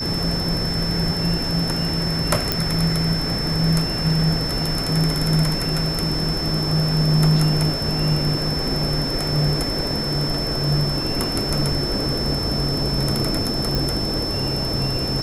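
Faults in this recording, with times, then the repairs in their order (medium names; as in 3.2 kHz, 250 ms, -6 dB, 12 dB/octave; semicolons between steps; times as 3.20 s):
whine 5.3 kHz -25 dBFS
2.52 s: pop -4 dBFS
13.75 s: pop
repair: de-click; band-stop 5.3 kHz, Q 30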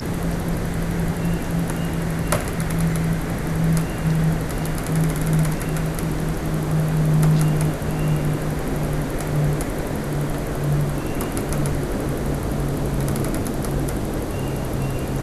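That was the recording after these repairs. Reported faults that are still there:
nothing left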